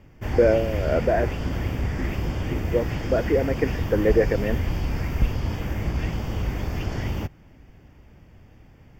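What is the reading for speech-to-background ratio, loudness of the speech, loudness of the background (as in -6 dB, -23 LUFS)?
4.0 dB, -24.0 LUFS, -28.0 LUFS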